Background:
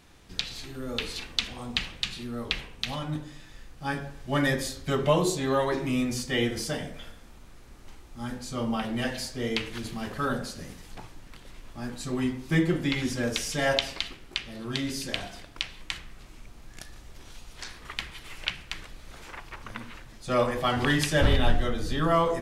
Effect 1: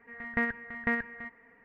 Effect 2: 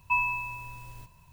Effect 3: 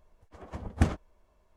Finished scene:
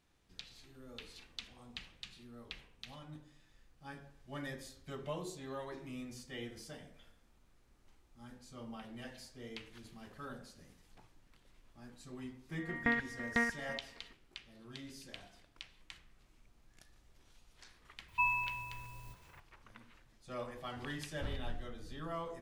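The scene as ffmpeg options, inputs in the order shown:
-filter_complex "[0:a]volume=-18.5dB[a];[1:a]atrim=end=1.64,asetpts=PTS-STARTPTS,volume=-3dB,afade=t=in:d=0.004:c=hsin,afade=t=out:st=1.636:d=0.004:c=hsin,adelay=12490[b];[2:a]atrim=end=1.32,asetpts=PTS-STARTPTS,volume=-5.5dB,afade=t=in:d=0.004:c=hsin,afade=t=out:st=1.316:d=0.004:c=hsin,adelay=18080[c];[a][b][c]amix=inputs=3:normalize=0"

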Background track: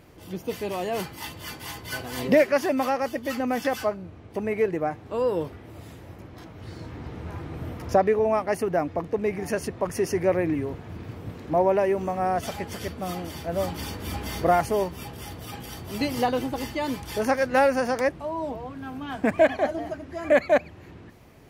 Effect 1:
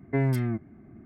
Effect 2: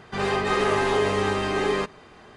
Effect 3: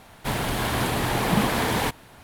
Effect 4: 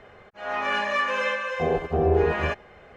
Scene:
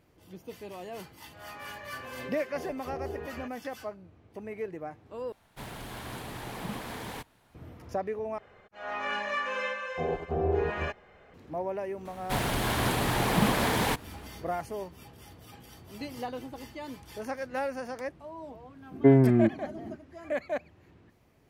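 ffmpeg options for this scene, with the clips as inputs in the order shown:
-filter_complex "[4:a]asplit=2[a][b];[3:a]asplit=2[c][d];[0:a]volume=-12.5dB[e];[d]acrusher=bits=8:mode=log:mix=0:aa=0.000001[f];[1:a]equalizer=f=350:t=o:w=2.4:g=15[g];[e]asplit=3[h][i][j];[h]atrim=end=5.324[k];[c]atrim=end=2.23,asetpts=PTS-STARTPTS,volume=-15.5dB[l];[i]atrim=start=7.546:end=8.384[m];[b]atrim=end=2.96,asetpts=PTS-STARTPTS,volume=-7dB[n];[j]atrim=start=11.336[o];[a]atrim=end=2.96,asetpts=PTS-STARTPTS,volume=-17.5dB,afade=t=in:d=0.004:c=hsin,afade=t=out:st=2.956:d=0.004:c=hsin,adelay=940[p];[f]atrim=end=2.23,asetpts=PTS-STARTPTS,volume=-3dB,afade=t=in:d=0.004:c=hsin,afade=t=out:st=2.226:d=0.004:c=hsin,adelay=12050[q];[g]atrim=end=1.05,asetpts=PTS-STARTPTS,volume=-4.5dB,afade=t=in:d=0.004:c=hsin,afade=t=out:st=1.046:d=0.004:c=hsin,adelay=18910[r];[k][l]acrossfade=d=0.004:c1=hsin:c2=hsin[s];[s][m]acrossfade=d=0.004:c1=hsin:c2=hsin[t];[t][n]acrossfade=d=0.004:c1=hsin:c2=hsin[u];[u][o]acrossfade=d=0.004:c1=hsin:c2=hsin[v];[v][p][q][r]amix=inputs=4:normalize=0"

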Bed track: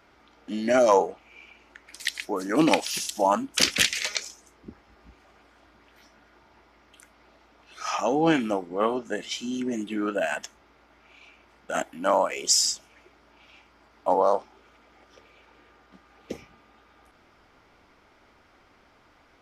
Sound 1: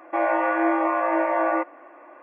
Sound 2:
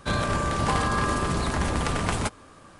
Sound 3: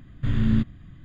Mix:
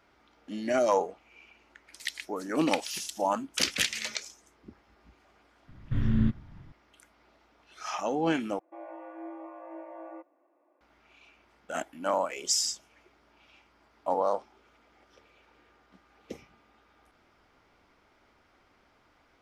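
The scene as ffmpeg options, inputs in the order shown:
-filter_complex "[3:a]asplit=2[a][b];[0:a]volume=-6dB[c];[a]highpass=610[d];[b]highshelf=f=3.6k:g=-10.5[e];[1:a]equalizer=f=1.7k:t=o:w=1.8:g=-13.5[f];[c]asplit=2[g][h];[g]atrim=end=8.594[i];[f]atrim=end=2.22,asetpts=PTS-STARTPTS,volume=-17.5dB[j];[h]atrim=start=10.806[k];[d]atrim=end=1.04,asetpts=PTS-STARTPTS,volume=-14.5dB,afade=t=in:d=0.004:c=hsin,afade=t=out:st=1.036:d=0.004:c=hsin,adelay=3520[l];[e]atrim=end=1.04,asetpts=PTS-STARTPTS,volume=-4dB,afade=t=in:d=0.004:c=hsin,afade=t=out:st=1.036:d=0.004:c=hsin,adelay=5680[m];[i][j]acrossfade=d=0.004:c1=hsin:c2=hsin[n];[n][k]acrossfade=d=0.004:c1=hsin:c2=hsin[o];[o][l][m]amix=inputs=3:normalize=0"

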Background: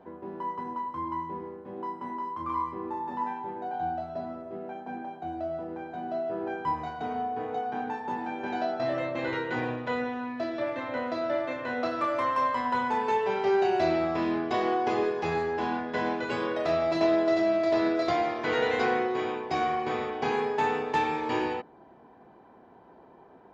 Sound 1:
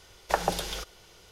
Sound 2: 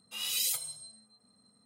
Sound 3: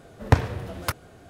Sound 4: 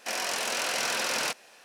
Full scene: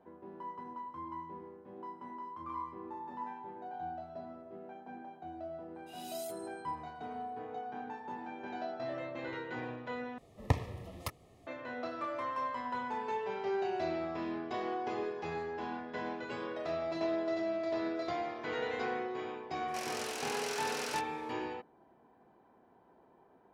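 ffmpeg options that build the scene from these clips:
-filter_complex "[0:a]volume=-10dB[a];[3:a]asuperstop=centerf=1500:order=8:qfactor=4.1[b];[a]asplit=2[c][d];[c]atrim=end=10.184[e];[b]atrim=end=1.29,asetpts=PTS-STARTPTS,volume=-11.5dB[f];[d]atrim=start=11.466[g];[2:a]atrim=end=1.65,asetpts=PTS-STARTPTS,volume=-18dB,afade=t=in:d=0.004:c=hsin,afade=t=out:st=1.646:d=0.004:c=hsin,adelay=5750[h];[4:a]atrim=end=1.64,asetpts=PTS-STARTPTS,volume=-11dB,afade=t=in:d=0.004:c=hsin,afade=t=out:st=1.636:d=0.004:c=hsin,adelay=19680[i];[e][f]acrossfade=d=0.004:c1=hsin:c2=hsin[j];[j][g]acrossfade=d=0.004:c1=hsin:c2=hsin[k];[k][h][i]amix=inputs=3:normalize=0"

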